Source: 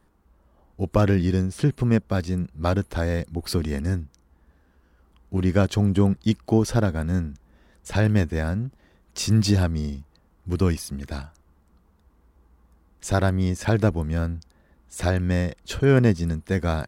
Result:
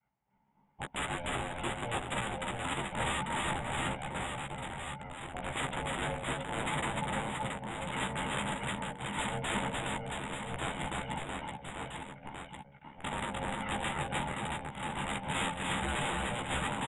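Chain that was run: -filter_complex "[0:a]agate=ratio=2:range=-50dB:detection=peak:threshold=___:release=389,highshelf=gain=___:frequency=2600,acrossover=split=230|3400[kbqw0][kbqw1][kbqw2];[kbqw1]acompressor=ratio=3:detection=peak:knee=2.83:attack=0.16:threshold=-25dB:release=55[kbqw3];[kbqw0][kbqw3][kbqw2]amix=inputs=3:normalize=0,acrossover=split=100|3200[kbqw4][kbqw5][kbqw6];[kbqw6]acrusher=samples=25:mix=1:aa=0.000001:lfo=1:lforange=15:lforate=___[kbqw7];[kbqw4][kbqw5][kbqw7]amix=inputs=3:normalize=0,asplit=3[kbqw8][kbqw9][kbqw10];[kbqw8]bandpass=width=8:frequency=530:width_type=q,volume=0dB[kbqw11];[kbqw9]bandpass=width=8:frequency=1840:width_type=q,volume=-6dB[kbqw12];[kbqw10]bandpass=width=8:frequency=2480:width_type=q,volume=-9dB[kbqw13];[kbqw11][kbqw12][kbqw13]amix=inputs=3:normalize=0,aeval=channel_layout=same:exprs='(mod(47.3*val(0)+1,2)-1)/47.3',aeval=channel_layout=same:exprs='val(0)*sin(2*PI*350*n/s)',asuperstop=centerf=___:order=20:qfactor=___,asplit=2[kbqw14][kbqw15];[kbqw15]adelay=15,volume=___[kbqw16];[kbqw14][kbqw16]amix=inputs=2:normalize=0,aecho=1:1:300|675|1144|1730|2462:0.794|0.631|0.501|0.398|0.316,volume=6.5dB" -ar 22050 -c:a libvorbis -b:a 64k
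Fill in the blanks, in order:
-51dB, 7, 2.4, 5200, 1.6, -7dB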